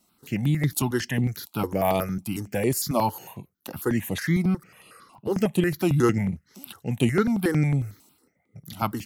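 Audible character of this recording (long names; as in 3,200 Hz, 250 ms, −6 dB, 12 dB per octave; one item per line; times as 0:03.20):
notches that jump at a steady rate 11 Hz 460–5,300 Hz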